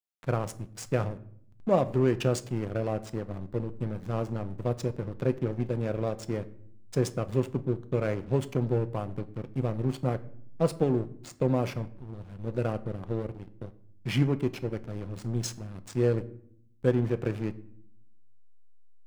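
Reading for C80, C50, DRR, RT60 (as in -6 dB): 21.0 dB, 18.0 dB, 11.0 dB, 0.65 s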